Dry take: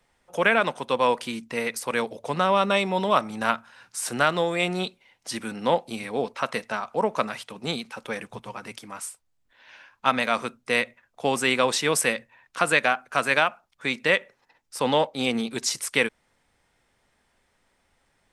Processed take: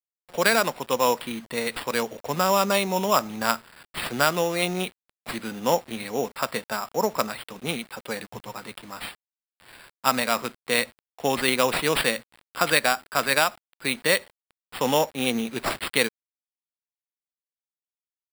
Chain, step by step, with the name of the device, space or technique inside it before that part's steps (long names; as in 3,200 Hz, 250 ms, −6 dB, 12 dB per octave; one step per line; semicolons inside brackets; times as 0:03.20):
early 8-bit sampler (sample-rate reduction 6,300 Hz, jitter 0%; bit reduction 8 bits)